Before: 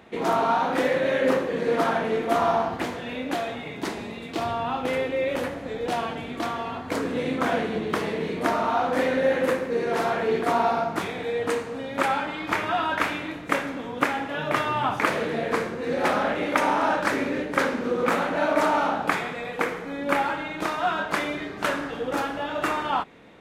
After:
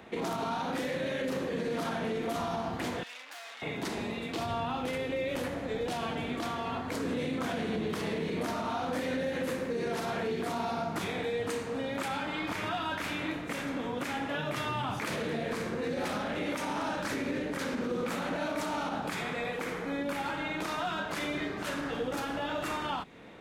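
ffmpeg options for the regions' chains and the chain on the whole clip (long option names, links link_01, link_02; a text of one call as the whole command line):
ffmpeg -i in.wav -filter_complex "[0:a]asettb=1/sr,asplit=3[link_01][link_02][link_03];[link_01]atrim=end=3.034[link_04];[link_02]atrim=start=3.03:end=3.62,asetpts=PTS-STARTPTS,afade=type=in:duration=0.004:curve=qsin,afade=type=out:start_time=0.586:duration=0.004:curve=qsin,aeval=exprs='(tanh(79.4*val(0)+0.7)-tanh(0.7))/79.4':channel_layout=same,highpass=1200[link_05];[link_03]atrim=start=3.616[link_06];[link_04][link_05]acrossfade=duration=0.004:curve1=hsin:curve2=qsin[link_07];[link_07][link_06]acrossfade=duration=0.004:curve1=qsin:curve2=hsin,acrossover=split=250|3000[link_08][link_09][link_10];[link_09]acompressor=threshold=-32dB:ratio=4[link_11];[link_08][link_11][link_10]amix=inputs=3:normalize=0,alimiter=level_in=0.5dB:limit=-24dB:level=0:latency=1:release=48,volume=-0.5dB" out.wav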